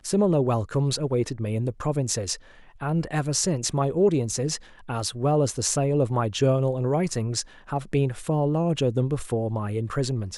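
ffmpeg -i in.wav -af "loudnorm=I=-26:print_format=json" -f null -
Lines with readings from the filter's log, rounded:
"input_i" : "-25.5",
"input_tp" : "-8.1",
"input_lra" : "2.3",
"input_thresh" : "-35.5",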